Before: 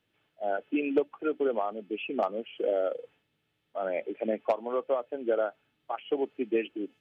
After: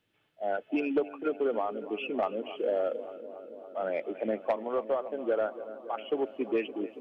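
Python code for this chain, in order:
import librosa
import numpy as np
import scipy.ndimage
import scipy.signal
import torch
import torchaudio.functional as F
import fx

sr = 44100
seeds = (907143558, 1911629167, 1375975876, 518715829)

p1 = x + fx.echo_filtered(x, sr, ms=282, feedback_pct=80, hz=2200.0, wet_db=-15.5, dry=0)
y = 10.0 ** (-18.0 / 20.0) * np.tanh(p1 / 10.0 ** (-18.0 / 20.0))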